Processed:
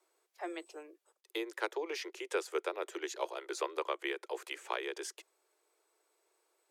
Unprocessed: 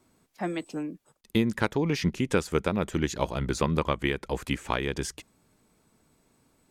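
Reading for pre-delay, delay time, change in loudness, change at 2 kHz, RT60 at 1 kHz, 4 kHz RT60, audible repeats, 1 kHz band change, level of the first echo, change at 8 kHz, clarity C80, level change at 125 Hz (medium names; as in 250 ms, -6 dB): no reverb, no echo, -10.0 dB, -7.5 dB, no reverb, no reverb, no echo, -7.5 dB, no echo, -7.5 dB, no reverb, under -40 dB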